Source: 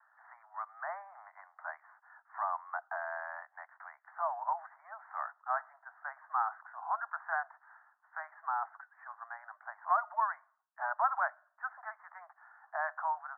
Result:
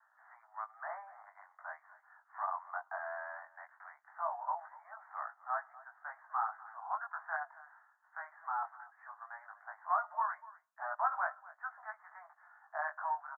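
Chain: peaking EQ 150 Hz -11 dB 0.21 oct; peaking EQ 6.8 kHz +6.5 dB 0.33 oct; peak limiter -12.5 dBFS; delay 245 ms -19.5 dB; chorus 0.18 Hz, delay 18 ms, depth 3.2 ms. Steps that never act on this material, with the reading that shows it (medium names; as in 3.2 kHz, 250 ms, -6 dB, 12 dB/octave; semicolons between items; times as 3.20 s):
peaking EQ 150 Hz: input has nothing below 540 Hz; peaking EQ 6.8 kHz: input has nothing above 2 kHz; peak limiter -12.5 dBFS: peak at its input -16.5 dBFS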